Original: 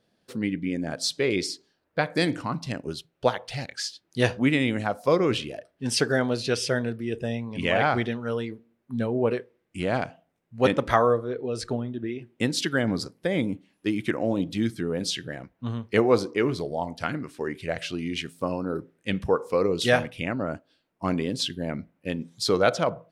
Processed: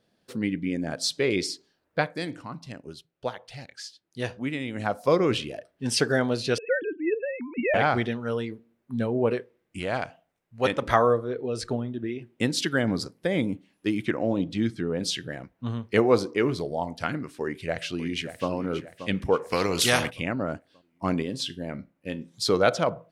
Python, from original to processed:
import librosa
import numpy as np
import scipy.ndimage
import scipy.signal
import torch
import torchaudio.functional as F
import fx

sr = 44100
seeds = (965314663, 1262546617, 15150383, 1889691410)

y = fx.sine_speech(x, sr, at=(6.58, 7.74))
y = fx.peak_eq(y, sr, hz=210.0, db=-7.0, octaves=2.3, at=(9.79, 10.82))
y = fx.air_absorb(y, sr, metres=68.0, at=(14.05, 15.03))
y = fx.echo_throw(y, sr, start_s=17.41, length_s=1.08, ms=580, feedback_pct=45, wet_db=-11.5)
y = fx.spectral_comp(y, sr, ratio=2.0, at=(19.51, 20.09), fade=0.02)
y = fx.comb_fb(y, sr, f0_hz=67.0, decay_s=0.25, harmonics='all', damping=0.0, mix_pct=50, at=(21.22, 22.34))
y = fx.edit(y, sr, fx.fade_down_up(start_s=2.02, length_s=2.83, db=-8.5, fade_s=0.12), tone=tone)